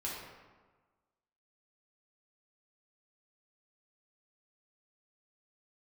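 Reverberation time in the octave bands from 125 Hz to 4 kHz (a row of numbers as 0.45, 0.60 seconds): 1.4, 1.4, 1.3, 1.4, 1.1, 0.80 seconds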